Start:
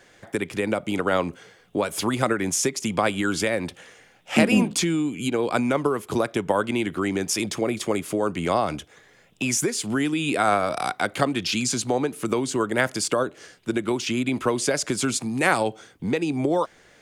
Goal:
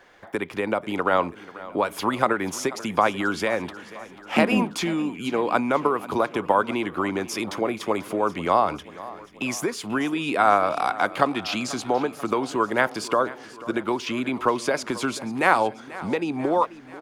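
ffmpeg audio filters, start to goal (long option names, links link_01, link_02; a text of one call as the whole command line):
ffmpeg -i in.wav -filter_complex "[0:a]equalizer=frequency=125:width_type=o:width=1:gain=-6,equalizer=frequency=1000:width_type=o:width=1:gain=8,equalizer=frequency=8000:width_type=o:width=1:gain=-10,asplit=2[link_01][link_02];[link_02]aecho=0:1:488|976|1464|1952|2440:0.133|0.0787|0.0464|0.0274|0.0162[link_03];[link_01][link_03]amix=inputs=2:normalize=0,volume=-1.5dB" out.wav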